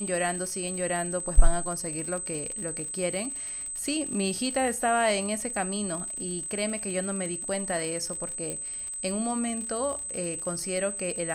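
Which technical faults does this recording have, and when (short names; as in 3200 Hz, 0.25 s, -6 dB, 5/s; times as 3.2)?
crackle 57/s -34 dBFS
tone 8200 Hz -33 dBFS
8.5 pop -19 dBFS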